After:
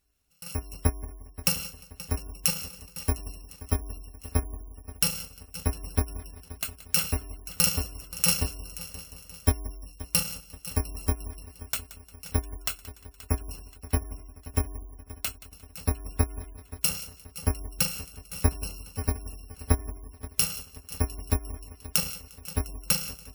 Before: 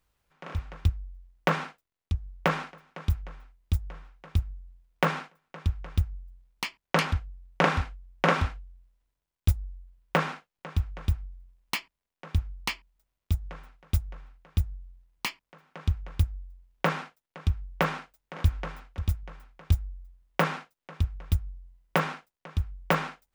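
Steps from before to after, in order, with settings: bit-reversed sample order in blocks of 128 samples; in parallel at -1.5 dB: compression 6:1, threshold -31 dBFS, peak gain reduction 15 dB; on the sum: Chebyshev shaper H 3 -29 dB, 7 -28 dB, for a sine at -3.5 dBFS; multi-head delay 176 ms, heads first and third, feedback 66%, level -18 dB; spectral gate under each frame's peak -30 dB strong

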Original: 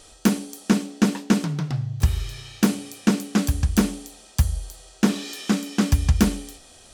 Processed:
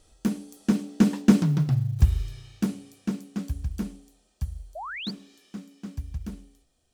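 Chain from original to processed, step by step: Doppler pass-by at 1.41 s, 6 m/s, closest 2.5 m; bass shelf 320 Hz +11 dB; companded quantiser 8-bit; painted sound rise, 4.75–5.11 s, 580–4900 Hz -31 dBFS; trim -4.5 dB

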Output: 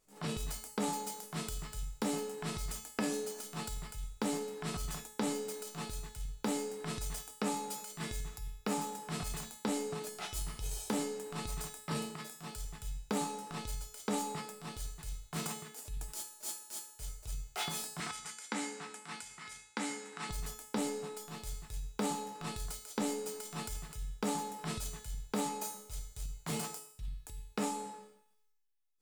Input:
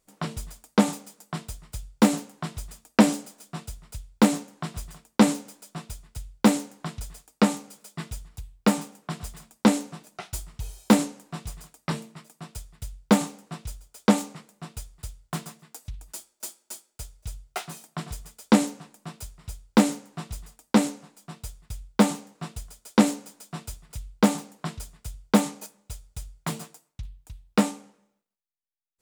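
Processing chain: transient shaper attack -11 dB, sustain +9 dB; compression 8:1, threshold -31 dBFS, peak gain reduction 17.5 dB; 18.00–20.29 s: cabinet simulation 270–9900 Hz, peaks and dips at 410 Hz -9 dB, 620 Hz -8 dB, 1.5 kHz +5 dB, 2.1 kHz +7 dB; feedback comb 430 Hz, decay 0.69 s, mix 90%; trim +16.5 dB

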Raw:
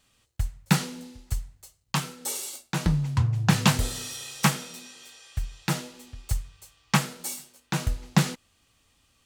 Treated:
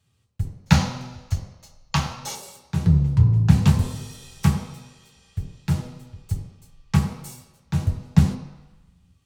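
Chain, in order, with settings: octave divider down 1 oct, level -3 dB; time-frequency box 0.66–2.35 s, 510–7100 Hz +11 dB; on a send: reverberation RT60 1.0 s, pre-delay 3 ms, DRR 2.5 dB; on the sum: trim -8.5 dB

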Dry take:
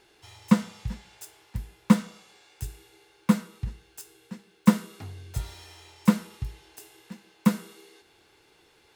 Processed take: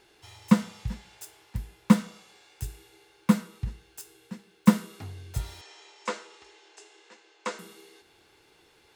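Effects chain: 5.61–7.59 s: elliptic band-pass 380–7300 Hz, stop band 40 dB

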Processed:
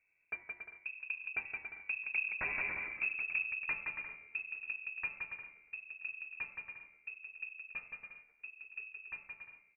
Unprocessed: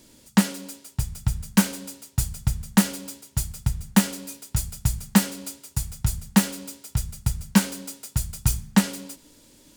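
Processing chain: Doppler pass-by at 2.64 s, 45 m/s, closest 5 m; bass shelf 170 Hz +4.5 dB; in parallel at +2 dB: compression, threshold -43 dBFS, peak gain reduction 23.5 dB; on the sum: wavefolder -25.5 dBFS; on a send: bouncing-ball echo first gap 170 ms, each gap 0.65×, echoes 5; on the sum: frequency inversion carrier 2.6 kHz; trim -3 dB

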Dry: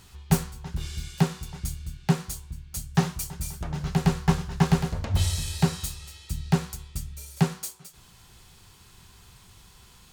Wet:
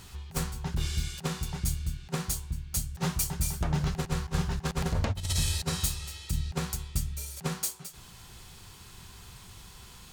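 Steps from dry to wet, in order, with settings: compressor with a negative ratio -28 dBFS, ratio -0.5

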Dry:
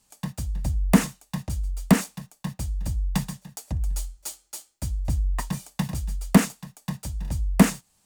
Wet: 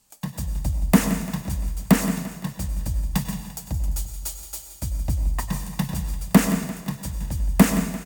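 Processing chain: peaking EQ 16 kHz +9.5 dB 0.36 oct; on a send: feedback delay 172 ms, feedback 55%, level -14 dB; on the sum: plate-style reverb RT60 0.98 s, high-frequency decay 0.95×, pre-delay 85 ms, DRR 8 dB; trim +1 dB

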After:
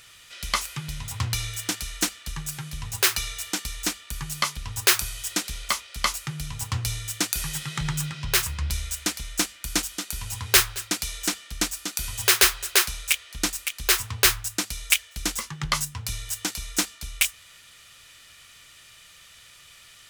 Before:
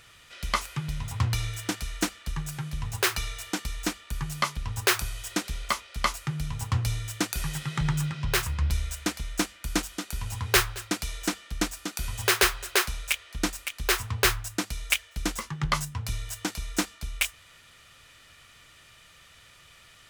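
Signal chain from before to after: treble shelf 2.3 kHz +10.5 dB; trim -2.5 dB

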